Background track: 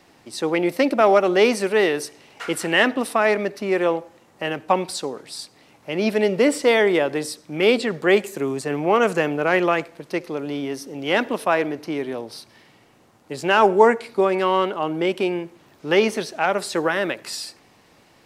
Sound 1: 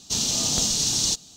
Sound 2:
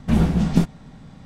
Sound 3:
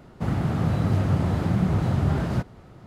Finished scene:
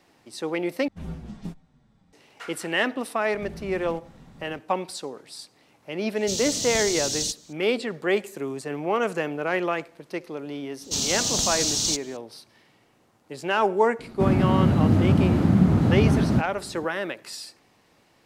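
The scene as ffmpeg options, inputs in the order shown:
-filter_complex "[2:a]asplit=2[s0][s1];[1:a]asplit=2[s2][s3];[0:a]volume=0.473[s4];[s0]asplit=2[s5][s6];[s6]adelay=6.9,afreqshift=-1.8[s7];[s5][s7]amix=inputs=2:normalize=1[s8];[s1]acompressor=threshold=0.0282:ratio=6:attack=3.2:release=140:knee=1:detection=peak[s9];[s2]equalizer=f=1100:t=o:w=0.87:g=-15[s10];[3:a]equalizer=f=250:w=1.5:g=10[s11];[s4]asplit=2[s12][s13];[s12]atrim=end=0.884[s14];[s8]atrim=end=1.25,asetpts=PTS-STARTPTS,volume=0.168[s15];[s13]atrim=start=2.126[s16];[s9]atrim=end=1.25,asetpts=PTS-STARTPTS,volume=0.501,afade=t=in:d=0.004:c=hsin,afade=t=out:st=1.246:d=0.004:c=hsin,adelay=3340[s17];[s10]atrim=end=1.36,asetpts=PTS-STARTPTS,volume=0.596,afade=t=in:d=0.004:c=hsin,afade=t=out:st=1.356:d=0.004:c=hsin,adelay=6170[s18];[s3]atrim=end=1.36,asetpts=PTS-STARTPTS,volume=0.841,afade=t=in:d=0.004:c=hsin,afade=t=out:st=1.356:d=0.004:c=hsin,adelay=10810[s19];[s11]atrim=end=2.86,asetpts=PTS-STARTPTS,afade=t=in:d=0.004:c=hsin,afade=t=out:st=2.856:d=0.004:c=hsin,adelay=13990[s20];[s14][s15]acrossfade=d=0.004:c1=hsin:c2=hsin[s21];[s21][s16]acrossfade=d=0.004:c1=hsin:c2=hsin[s22];[s22][s17][s18][s19][s20]amix=inputs=5:normalize=0"

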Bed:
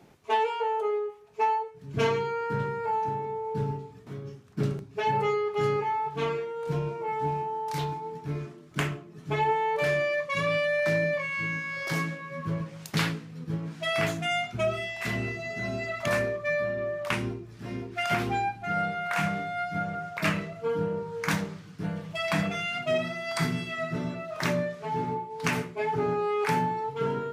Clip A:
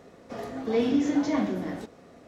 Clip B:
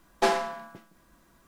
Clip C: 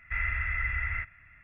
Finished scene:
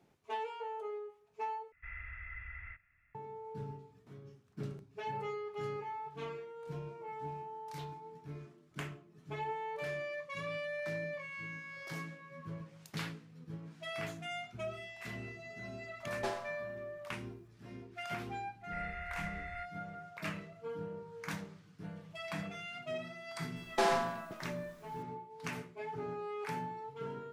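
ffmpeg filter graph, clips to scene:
-filter_complex "[3:a]asplit=2[s0][s1];[2:a]asplit=2[s2][s3];[0:a]volume=0.211[s4];[s3]alimiter=limit=0.119:level=0:latency=1:release=91[s5];[s4]asplit=2[s6][s7];[s6]atrim=end=1.724[s8];[s0]atrim=end=1.43,asetpts=PTS-STARTPTS,volume=0.158[s9];[s7]atrim=start=3.146[s10];[s2]atrim=end=1.47,asetpts=PTS-STARTPTS,volume=0.178,afade=t=in:d=0.004:c=hsin,afade=t=out:st=1.466:d=0.004:c=hsin,adelay=16010[s11];[s1]atrim=end=1.43,asetpts=PTS-STARTPTS,volume=0.168,afade=t=in:d=0.004:c=hsin,afade=t=out:st=1.426:d=0.004:c=hsin,adelay=18610[s12];[s5]atrim=end=1.47,asetpts=PTS-STARTPTS,volume=0.944,afade=t=in:d=0.004:c=hsin,afade=t=out:st=1.466:d=0.004:c=hsin,adelay=1038996S[s13];[s8][s9]acrossfade=d=0.004:c1=hsin:c2=hsin[s14];[s14][s10]acrossfade=d=0.004:c1=hsin:c2=hsin[s15];[s15][s11][s12][s13]amix=inputs=4:normalize=0"

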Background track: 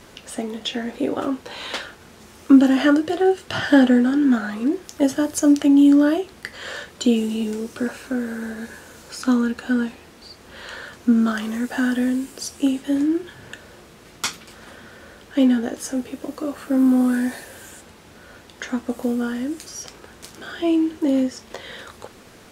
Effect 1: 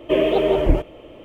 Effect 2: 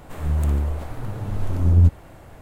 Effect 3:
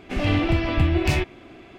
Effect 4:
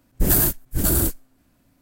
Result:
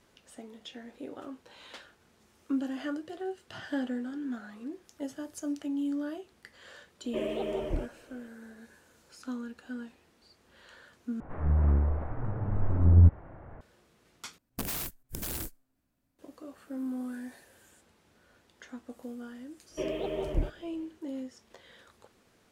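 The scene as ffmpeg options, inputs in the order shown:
-filter_complex "[1:a]asplit=2[s0][s1];[0:a]volume=0.112[s2];[2:a]lowpass=f=1800:w=0.5412,lowpass=f=1800:w=1.3066[s3];[4:a]aeval=exprs='(mod(3.76*val(0)+1,2)-1)/3.76':c=same[s4];[s1]bass=f=250:g=5,treble=f=4000:g=5[s5];[s2]asplit=3[s6][s7][s8];[s6]atrim=end=11.204[s9];[s3]atrim=end=2.41,asetpts=PTS-STARTPTS,volume=0.668[s10];[s7]atrim=start=13.606:end=14.384[s11];[s4]atrim=end=1.81,asetpts=PTS-STARTPTS,volume=0.141[s12];[s8]atrim=start=16.186[s13];[s0]atrim=end=1.24,asetpts=PTS-STARTPTS,volume=0.168,afade=t=in:d=0.004:c=hsin,afade=t=out:st=1.236:d=0.004:c=hsin,adelay=7040[s14];[s5]atrim=end=1.24,asetpts=PTS-STARTPTS,volume=0.15,afade=t=in:d=0.1,afade=t=out:st=1.14:d=0.1,adelay=19680[s15];[s9][s10]acrossfade=d=0.004:c1=hsin:c2=hsin[s16];[s16][s11]acrossfade=d=0.004:c1=hsin:c2=hsin[s17];[s17][s12]acrossfade=d=0.004:c1=hsin:c2=hsin[s18];[s18][s13]acrossfade=d=0.004:c1=hsin:c2=hsin[s19];[s19][s14][s15]amix=inputs=3:normalize=0"

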